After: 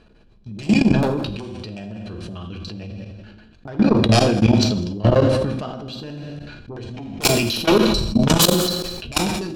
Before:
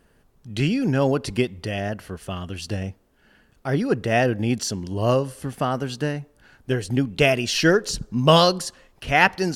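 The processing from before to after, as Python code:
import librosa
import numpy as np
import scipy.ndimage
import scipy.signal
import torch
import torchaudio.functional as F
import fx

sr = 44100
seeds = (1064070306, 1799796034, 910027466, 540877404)

p1 = fx.low_shelf(x, sr, hz=94.0, db=3.5)
p2 = fx.small_body(p1, sr, hz=(2400.0, 4000.0), ring_ms=50, db=18)
p3 = fx.filter_lfo_lowpass(p2, sr, shape='square', hz=6.8, low_hz=330.0, high_hz=4100.0, q=1.3)
p4 = fx.fold_sine(p3, sr, drive_db=16, ceiling_db=1.5)
p5 = p4 + fx.echo_single(p4, sr, ms=201, db=-17.5, dry=0)
p6 = fx.rev_fdn(p5, sr, rt60_s=0.84, lf_ratio=1.0, hf_ratio=1.0, size_ms=28.0, drr_db=2.5)
p7 = fx.level_steps(p6, sr, step_db=20)
p8 = fx.peak_eq(p7, sr, hz=2000.0, db=-9.0, octaves=0.46)
p9 = fx.sustainer(p8, sr, db_per_s=35.0)
y = p9 * librosa.db_to_amplitude(-12.5)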